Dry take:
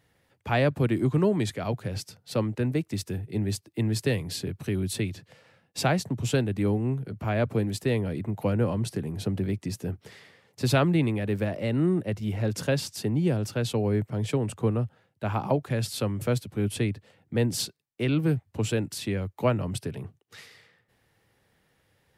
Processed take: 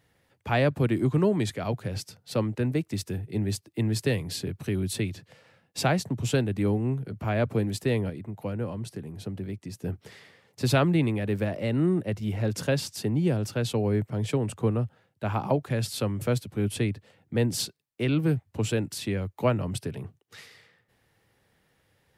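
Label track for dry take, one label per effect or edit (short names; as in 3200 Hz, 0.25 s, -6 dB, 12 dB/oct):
8.100000	9.840000	gain -6.5 dB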